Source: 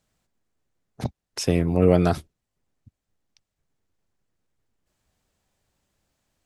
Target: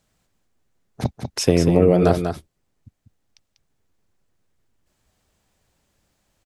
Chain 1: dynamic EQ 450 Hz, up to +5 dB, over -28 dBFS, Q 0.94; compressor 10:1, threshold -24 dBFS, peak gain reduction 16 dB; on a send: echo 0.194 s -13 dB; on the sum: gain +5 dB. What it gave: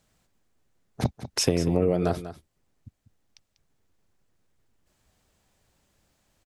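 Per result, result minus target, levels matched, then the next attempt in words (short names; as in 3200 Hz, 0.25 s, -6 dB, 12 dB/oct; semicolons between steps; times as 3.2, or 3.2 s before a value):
compressor: peak gain reduction +8 dB; echo-to-direct -6 dB
dynamic EQ 450 Hz, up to +5 dB, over -28 dBFS, Q 0.94; compressor 10:1, threshold -15 dBFS, peak gain reduction 8 dB; on a send: echo 0.194 s -13 dB; on the sum: gain +5 dB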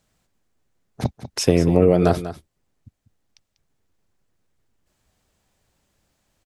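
echo-to-direct -6 dB
dynamic EQ 450 Hz, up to +5 dB, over -28 dBFS, Q 0.94; compressor 10:1, threshold -15 dBFS, peak gain reduction 8 dB; on a send: echo 0.194 s -7 dB; on the sum: gain +5 dB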